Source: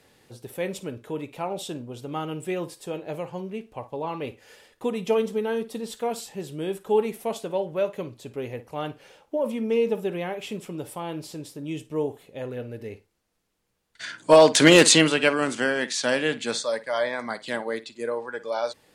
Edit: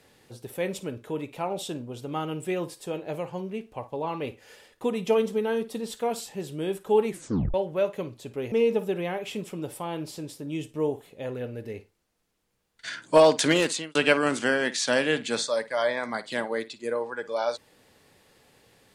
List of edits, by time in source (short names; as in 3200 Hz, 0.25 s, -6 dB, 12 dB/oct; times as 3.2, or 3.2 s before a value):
7.09 tape stop 0.45 s
8.52–9.68 cut
14.06–15.11 fade out